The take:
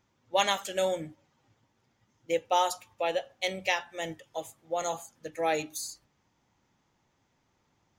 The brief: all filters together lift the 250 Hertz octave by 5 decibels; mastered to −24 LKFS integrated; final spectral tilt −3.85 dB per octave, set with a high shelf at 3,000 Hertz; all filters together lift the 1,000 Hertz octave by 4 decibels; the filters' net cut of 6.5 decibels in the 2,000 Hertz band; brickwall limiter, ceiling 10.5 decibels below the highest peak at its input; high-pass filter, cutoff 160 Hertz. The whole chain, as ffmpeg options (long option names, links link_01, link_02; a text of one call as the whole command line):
ffmpeg -i in.wav -af "highpass=160,equalizer=frequency=250:width_type=o:gain=8.5,equalizer=frequency=1000:width_type=o:gain=6.5,equalizer=frequency=2000:width_type=o:gain=-8.5,highshelf=frequency=3000:gain=-3.5,volume=9.5dB,alimiter=limit=-11.5dB:level=0:latency=1" out.wav